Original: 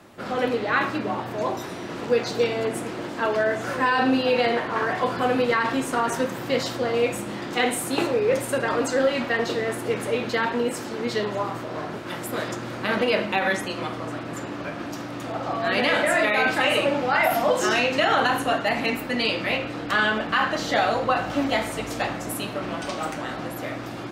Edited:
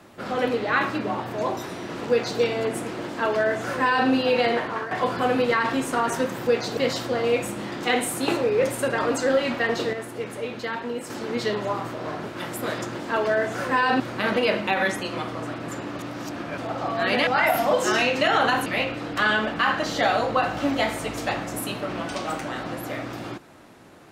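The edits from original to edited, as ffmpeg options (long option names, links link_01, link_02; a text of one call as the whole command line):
ffmpeg -i in.wav -filter_complex "[0:a]asplit=12[link_01][link_02][link_03][link_04][link_05][link_06][link_07][link_08][link_09][link_10][link_11][link_12];[link_01]atrim=end=4.91,asetpts=PTS-STARTPTS,afade=type=out:start_time=4.64:duration=0.27:silence=0.266073[link_13];[link_02]atrim=start=4.91:end=6.472,asetpts=PTS-STARTPTS,afade=type=in:duration=0.004:curve=hsin:silence=0.266073[link_14];[link_03]atrim=start=2.098:end=2.402[link_15];[link_04]atrim=start=6.468:end=9.632[link_16];[link_05]atrim=start=9.628:end=10.802,asetpts=PTS-STARTPTS,volume=-6dB[link_17];[link_06]atrim=start=10.798:end=12.652[link_18];[link_07]atrim=start=3.038:end=4.092[link_19];[link_08]atrim=start=12.648:end=14.642[link_20];[link_09]atrim=start=14.638:end=15.232,asetpts=PTS-STARTPTS,areverse[link_21];[link_10]atrim=start=15.228:end=15.922[link_22];[link_11]atrim=start=17.038:end=18.432[link_23];[link_12]atrim=start=19.388[link_24];[link_13][link_14]concat=n=2:v=0:a=1[link_25];[link_25][link_15]acrossfade=duration=0.004:curve1=hsin:curve2=hsin[link_26];[link_26][link_16]acrossfade=duration=0.004:curve1=hsin:curve2=hsin[link_27];[link_27][link_17]acrossfade=duration=0.004:curve1=hsin:curve2=hsin[link_28];[link_28][link_18]acrossfade=duration=0.004:curve1=hsin:curve2=hsin[link_29];[link_29][link_19]acrossfade=duration=0.004:curve1=hsin:curve2=hsin[link_30];[link_30][link_20]acrossfade=duration=0.004:curve1=hsin:curve2=hsin[link_31];[link_31][link_21]acrossfade=duration=0.004:curve1=hsin:curve2=hsin[link_32];[link_32][link_22]acrossfade=duration=0.004:curve1=hsin:curve2=hsin[link_33];[link_33][link_23]acrossfade=duration=0.004:curve1=hsin:curve2=hsin[link_34];[link_34][link_24]acrossfade=duration=0.004:curve1=hsin:curve2=hsin" out.wav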